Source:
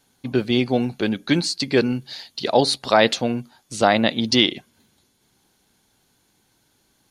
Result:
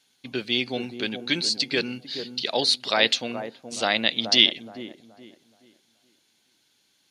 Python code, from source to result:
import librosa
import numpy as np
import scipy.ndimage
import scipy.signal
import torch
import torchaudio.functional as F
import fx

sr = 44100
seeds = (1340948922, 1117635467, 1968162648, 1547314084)

p1 = fx.weighting(x, sr, curve='D')
p2 = p1 + fx.echo_wet_lowpass(p1, sr, ms=424, feedback_pct=30, hz=970.0, wet_db=-8, dry=0)
y = p2 * 10.0 ** (-9.0 / 20.0)